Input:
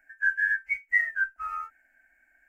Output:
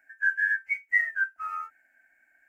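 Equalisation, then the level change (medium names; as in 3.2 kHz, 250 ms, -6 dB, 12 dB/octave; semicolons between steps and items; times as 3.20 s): high-pass 200 Hz 6 dB/octave; 0.0 dB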